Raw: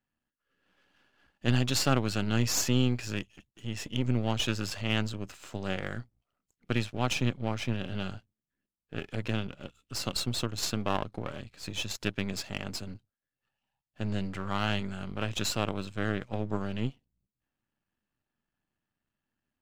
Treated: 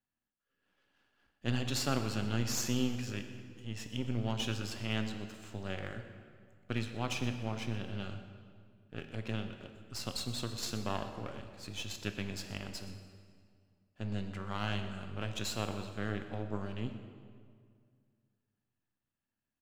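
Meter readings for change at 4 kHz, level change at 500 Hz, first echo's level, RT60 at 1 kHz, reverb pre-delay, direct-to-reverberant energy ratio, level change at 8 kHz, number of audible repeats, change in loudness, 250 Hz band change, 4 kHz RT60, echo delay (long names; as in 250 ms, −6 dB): −6.0 dB, −6.0 dB, −16.5 dB, 2.0 s, 4 ms, 6.5 dB, −6.5 dB, 1, −6.0 dB, −5.5 dB, 1.6 s, 123 ms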